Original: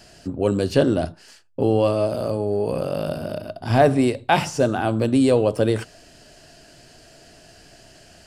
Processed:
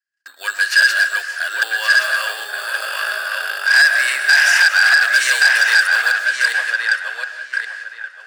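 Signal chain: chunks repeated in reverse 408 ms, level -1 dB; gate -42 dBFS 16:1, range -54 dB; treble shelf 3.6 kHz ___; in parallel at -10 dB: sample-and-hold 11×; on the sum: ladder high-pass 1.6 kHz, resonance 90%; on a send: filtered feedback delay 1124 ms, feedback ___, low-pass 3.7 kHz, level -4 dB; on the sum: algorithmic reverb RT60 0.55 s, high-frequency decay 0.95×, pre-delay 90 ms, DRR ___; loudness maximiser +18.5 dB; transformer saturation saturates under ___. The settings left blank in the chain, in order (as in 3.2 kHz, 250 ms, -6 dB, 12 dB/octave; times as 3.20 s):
+6 dB, 21%, 10.5 dB, 3 kHz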